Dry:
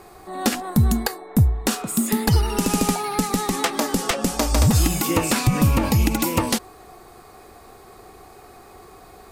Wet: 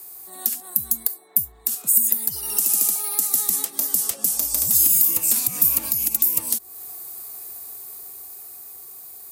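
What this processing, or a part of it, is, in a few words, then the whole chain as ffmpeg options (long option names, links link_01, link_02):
FM broadcast chain: -filter_complex "[0:a]highpass=57,dynaudnorm=framelen=270:gausssize=13:maxgain=7dB,acrossover=split=180|770[link_01][link_02][link_03];[link_01]acompressor=threshold=-29dB:ratio=4[link_04];[link_02]acompressor=threshold=-25dB:ratio=4[link_05];[link_03]acompressor=threshold=-28dB:ratio=4[link_06];[link_04][link_05][link_06]amix=inputs=3:normalize=0,aemphasis=mode=production:type=75fm,alimiter=limit=-3.5dB:level=0:latency=1:release=353,asoftclip=type=hard:threshold=-7.5dB,lowpass=frequency=15000:width=0.5412,lowpass=frequency=15000:width=1.3066,aemphasis=mode=production:type=75fm,asettb=1/sr,asplit=3[link_07][link_08][link_09];[link_07]atrim=end=2.574[link_10];[link_08]atrim=start=2.57:end=3.42,asetpts=PTS-STARTPTS,afade=type=in:duration=0.004:curve=qsin,afade=type=out:start_time=0.846:duration=0.004:curve=qsin,highpass=260[link_11];[link_09]atrim=start=3.416[link_12];[link_10][link_11]acrossfade=duration=0.004:curve1=hsin:curve2=qsin[link_13];[link_13][link_12]acrossfade=duration=0.004:curve1=qsin:curve2=hsin,volume=-13dB"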